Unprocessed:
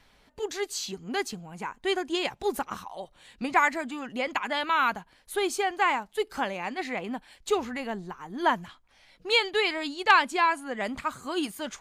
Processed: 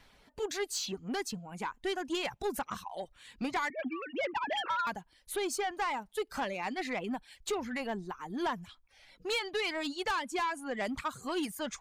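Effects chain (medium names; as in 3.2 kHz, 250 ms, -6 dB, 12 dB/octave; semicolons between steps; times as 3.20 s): 3.70–4.87 s: formants replaced by sine waves; reverb removal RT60 0.56 s; compression 3:1, threshold -27 dBFS, peak gain reduction 10 dB; saturation -26.5 dBFS, distortion -13 dB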